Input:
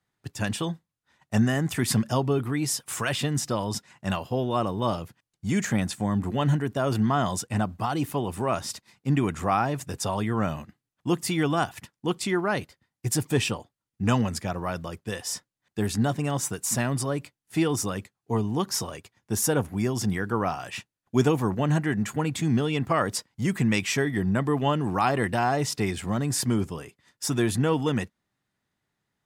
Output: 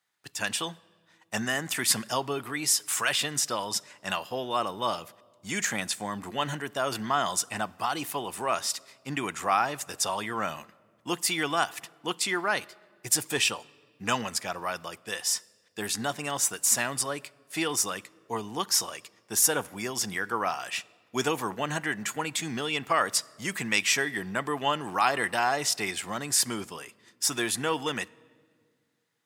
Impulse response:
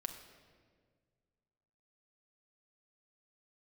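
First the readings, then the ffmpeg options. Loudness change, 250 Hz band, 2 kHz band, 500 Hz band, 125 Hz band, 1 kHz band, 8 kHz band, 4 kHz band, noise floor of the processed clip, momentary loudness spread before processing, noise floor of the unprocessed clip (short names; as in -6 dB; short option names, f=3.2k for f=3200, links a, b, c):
-1.5 dB, -10.0 dB, +3.0 dB, -4.5 dB, -15.0 dB, 0.0 dB, +4.5 dB, +4.5 dB, -67 dBFS, 9 LU, under -85 dBFS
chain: -filter_complex "[0:a]highpass=f=1.4k:p=1,asplit=2[a][b];[1:a]atrim=start_sample=2205,asetrate=41454,aresample=44100[c];[b][c]afir=irnorm=-1:irlink=0,volume=-13dB[d];[a][d]amix=inputs=2:normalize=0,volume=3.5dB"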